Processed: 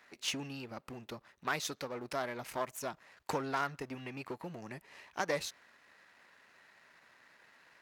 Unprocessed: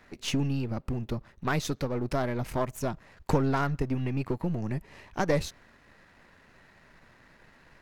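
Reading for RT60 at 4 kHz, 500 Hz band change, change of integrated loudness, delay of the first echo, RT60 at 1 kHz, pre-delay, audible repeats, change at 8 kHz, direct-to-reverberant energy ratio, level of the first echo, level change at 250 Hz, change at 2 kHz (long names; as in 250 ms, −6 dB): no reverb audible, −8.5 dB, −8.5 dB, no echo audible, no reverb audible, no reverb audible, no echo audible, −1.5 dB, no reverb audible, no echo audible, −13.5 dB, −3.0 dB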